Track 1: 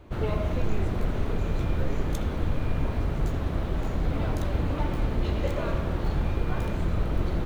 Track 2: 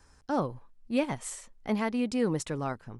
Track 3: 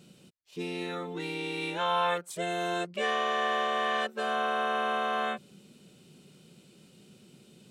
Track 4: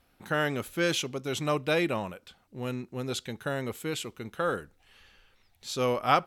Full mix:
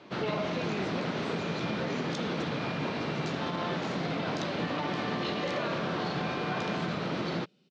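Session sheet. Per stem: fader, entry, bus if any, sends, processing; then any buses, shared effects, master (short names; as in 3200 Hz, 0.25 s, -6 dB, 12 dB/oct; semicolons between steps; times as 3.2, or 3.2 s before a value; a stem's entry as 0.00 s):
+1.0 dB, 0.00 s, no send, high shelf 2100 Hz +11.5 dB
-10.5 dB, 0.00 s, no send, dry
-9.5 dB, 1.60 s, no send, dry
off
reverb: off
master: elliptic band-pass 160–5200 Hz, stop band 50 dB; limiter -22.5 dBFS, peak gain reduction 6 dB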